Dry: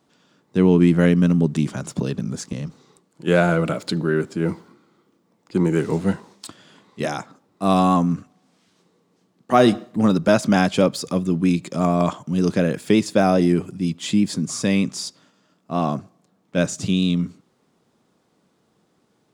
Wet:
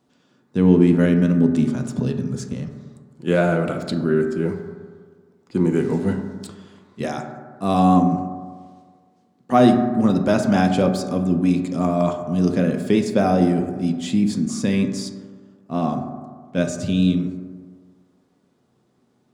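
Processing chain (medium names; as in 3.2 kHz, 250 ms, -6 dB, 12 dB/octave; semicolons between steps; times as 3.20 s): bass shelf 410 Hz +5 dB; reverberation RT60 1.7 s, pre-delay 4 ms, DRR 4.5 dB; trim -4.5 dB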